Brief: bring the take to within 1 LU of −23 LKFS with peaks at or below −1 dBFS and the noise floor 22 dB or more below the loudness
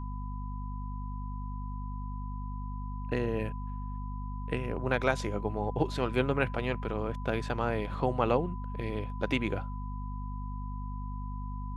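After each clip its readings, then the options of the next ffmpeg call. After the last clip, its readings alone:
mains hum 50 Hz; hum harmonics up to 250 Hz; level of the hum −34 dBFS; interfering tone 1,000 Hz; level of the tone −45 dBFS; integrated loudness −34.0 LKFS; sample peak −10.5 dBFS; target loudness −23.0 LKFS
→ -af "bandreject=frequency=50:width_type=h:width=6,bandreject=frequency=100:width_type=h:width=6,bandreject=frequency=150:width_type=h:width=6,bandreject=frequency=200:width_type=h:width=6,bandreject=frequency=250:width_type=h:width=6"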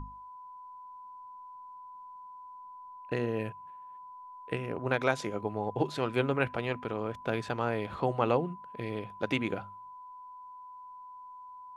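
mains hum none found; interfering tone 1,000 Hz; level of the tone −45 dBFS
→ -af "bandreject=frequency=1000:width=30"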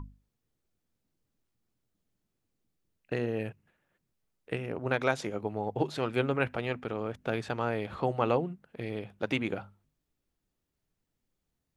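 interfering tone none found; integrated loudness −33.0 LKFS; sample peak −11.5 dBFS; target loudness −23.0 LKFS
→ -af "volume=10dB"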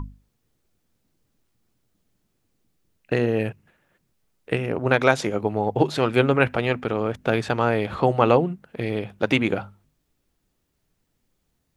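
integrated loudness −23.0 LKFS; sample peak −1.5 dBFS; background noise floor −73 dBFS

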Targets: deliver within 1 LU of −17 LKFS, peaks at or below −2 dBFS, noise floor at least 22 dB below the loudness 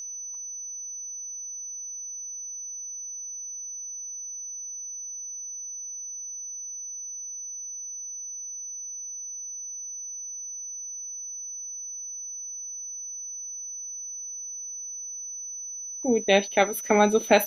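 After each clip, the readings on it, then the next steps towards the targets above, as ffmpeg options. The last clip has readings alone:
interfering tone 6,000 Hz; level of the tone −34 dBFS; integrated loudness −30.5 LKFS; sample peak −4.0 dBFS; target loudness −17.0 LKFS
→ -af "bandreject=frequency=6000:width=30"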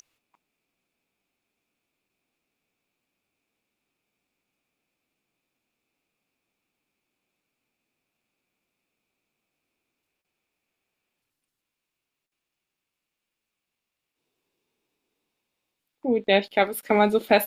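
interfering tone none found; integrated loudness −22.5 LKFS; sample peak −4.5 dBFS; target loudness −17.0 LKFS
→ -af "volume=5.5dB,alimiter=limit=-2dB:level=0:latency=1"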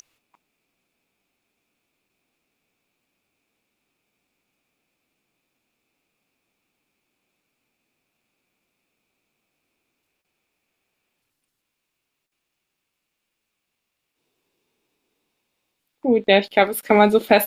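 integrated loudness −17.5 LKFS; sample peak −2.0 dBFS; background noise floor −79 dBFS

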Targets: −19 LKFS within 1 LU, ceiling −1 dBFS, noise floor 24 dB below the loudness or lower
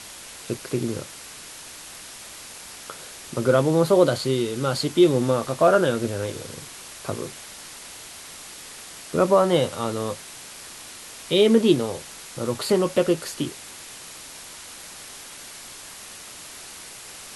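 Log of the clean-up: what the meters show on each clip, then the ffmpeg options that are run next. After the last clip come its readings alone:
background noise floor −41 dBFS; target noise floor −47 dBFS; integrated loudness −22.5 LKFS; sample peak −5.5 dBFS; target loudness −19.0 LKFS
→ -af "afftdn=noise_reduction=6:noise_floor=-41"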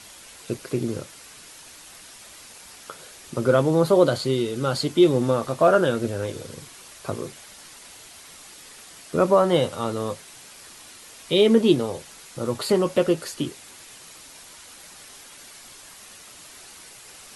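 background noise floor −46 dBFS; target noise floor −47 dBFS
→ -af "afftdn=noise_reduction=6:noise_floor=-46"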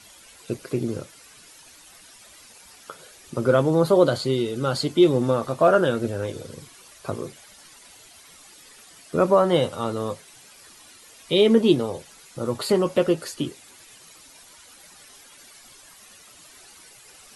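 background noise floor −50 dBFS; integrated loudness −22.5 LKFS; sample peak −5.5 dBFS; target loudness −19.0 LKFS
→ -af "volume=3.5dB"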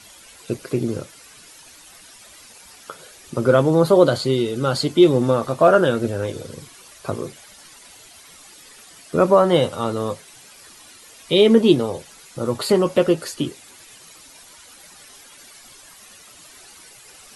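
integrated loudness −19.0 LKFS; sample peak −2.0 dBFS; background noise floor −46 dBFS

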